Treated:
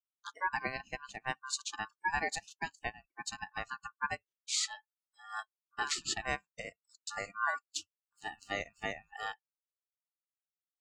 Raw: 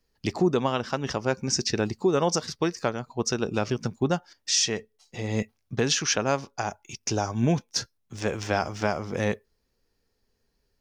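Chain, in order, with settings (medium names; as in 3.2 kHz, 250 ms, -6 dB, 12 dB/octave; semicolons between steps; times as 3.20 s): ring modulator 1.3 kHz; spectral noise reduction 26 dB; upward expansion 1.5:1, over -47 dBFS; trim -5.5 dB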